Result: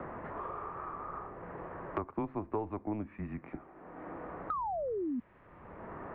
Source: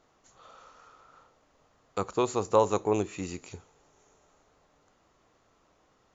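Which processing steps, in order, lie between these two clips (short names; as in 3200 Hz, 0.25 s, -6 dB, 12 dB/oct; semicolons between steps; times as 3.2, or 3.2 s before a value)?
mistuned SSB -110 Hz 160–2100 Hz; painted sound fall, 4.5–5.2, 230–1300 Hz -34 dBFS; three-band squash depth 100%; gain -2.5 dB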